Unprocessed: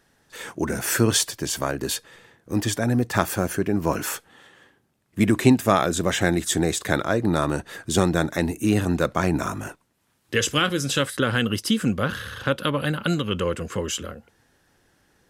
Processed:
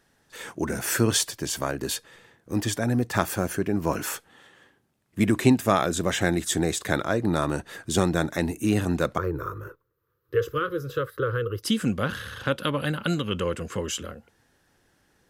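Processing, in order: 9.18–11.63 EQ curve 130 Hz 0 dB, 230 Hz -22 dB, 330 Hz -3 dB, 490 Hz +7 dB, 720 Hz -25 dB, 1200 Hz +2 dB, 2300 Hz -17 dB, 4300 Hz -16 dB, 8900 Hz -27 dB, 14000 Hz +1 dB; gain -2.5 dB

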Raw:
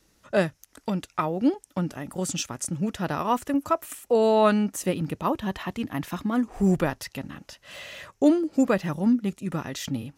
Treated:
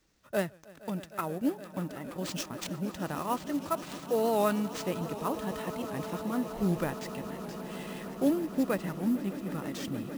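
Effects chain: sample-rate reducer 12000 Hz, jitter 20%; swelling echo 0.155 s, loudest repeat 8, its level -18 dB; record warp 78 rpm, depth 100 cents; gain -7.5 dB

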